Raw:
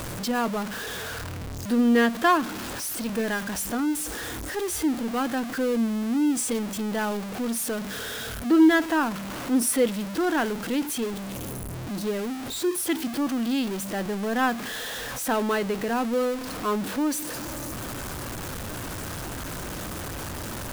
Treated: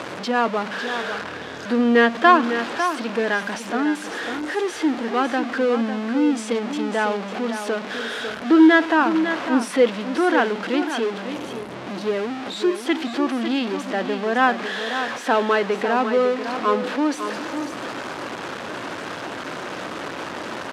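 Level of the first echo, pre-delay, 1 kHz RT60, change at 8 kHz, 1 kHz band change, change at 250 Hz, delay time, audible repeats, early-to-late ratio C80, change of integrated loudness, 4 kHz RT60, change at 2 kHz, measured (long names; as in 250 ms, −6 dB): −9.0 dB, no reverb audible, no reverb audible, −8.0 dB, +7.5 dB, +3.0 dB, 550 ms, 1, no reverb audible, +4.5 dB, no reverb audible, +7.5 dB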